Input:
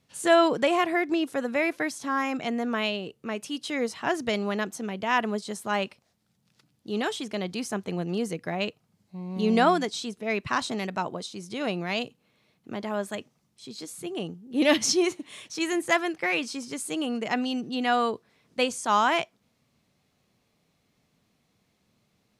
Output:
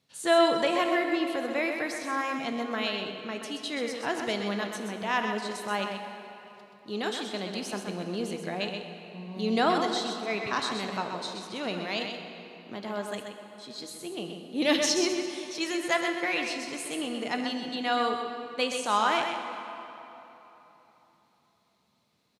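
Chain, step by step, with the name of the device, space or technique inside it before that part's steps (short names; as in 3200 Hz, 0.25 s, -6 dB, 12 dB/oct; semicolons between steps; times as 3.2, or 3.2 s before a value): PA in a hall (HPF 150 Hz 6 dB/oct; bell 4000 Hz +6 dB 0.45 oct; echo 0.128 s -6.5 dB; reverb RT60 3.6 s, pre-delay 9 ms, DRR 6 dB); gain -4 dB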